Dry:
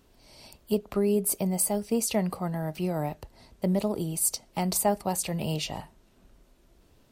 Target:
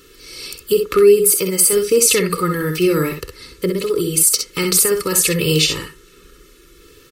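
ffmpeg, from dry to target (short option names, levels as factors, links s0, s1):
-filter_complex "[0:a]asettb=1/sr,asplit=3[s0][s1][s2];[s0]atrim=end=1.244[s3];[s1]atrim=start=1.24:end=1.73,asetpts=PTS-STARTPTS,afade=t=in:d=0.004:c=qsin,afade=t=out:st=0.486:d=0.004:c=qsin,lowshelf=f=180:g=-11.5[s4];[s2]atrim=start=1.726[s5];[s3][s4]acrossfade=d=0.004:c1=hsin:c2=qsin[s6];[s6][s5]acrossfade=d=0.004:c1=qsin:c2=hsin,asettb=1/sr,asplit=3[s7][s8][s9];[s7]atrim=end=3.694[s10];[s8]atrim=start=3.69:end=4.27,asetpts=PTS-STARTPTS,afade=t=in:d=0.004:c=qsin,afade=t=out:st=0.576:d=0.004:c=qsin,acompressor=threshold=0.0355:ratio=10[s11];[s9]atrim=start=4.266[s12];[s10][s11]acrossfade=d=0.004:c1=hsin:c2=qsin[s13];[s13][s12]acrossfade=d=0.004:c1=qsin:c2=hsin,aecho=1:1:2.3:0.82,alimiter=limit=0.1:level=0:latency=1:release=69,firequalizer=gain_entry='entry(110,0);entry(170,9);entry(480,10);entry(770,-25);entry(1100,13)':delay=0.05:min_phase=1,aecho=1:1:52|64:0.251|0.473,volume=1.58"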